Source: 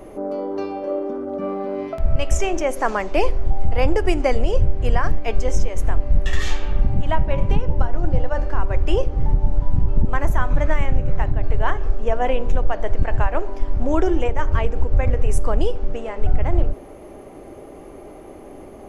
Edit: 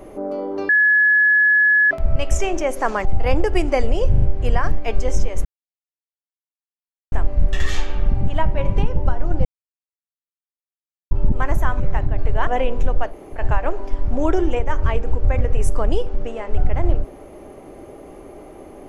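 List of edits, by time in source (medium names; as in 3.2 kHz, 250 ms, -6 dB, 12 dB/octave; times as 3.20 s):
0.69–1.91 s: bleep 1.7 kHz -11 dBFS
3.05–3.57 s: delete
4.62 s: stutter 0.04 s, 4 plays
5.85 s: insert silence 1.67 s
8.18–9.84 s: mute
10.53–11.05 s: delete
11.72–12.16 s: delete
12.79–13.06 s: room tone, crossfade 0.10 s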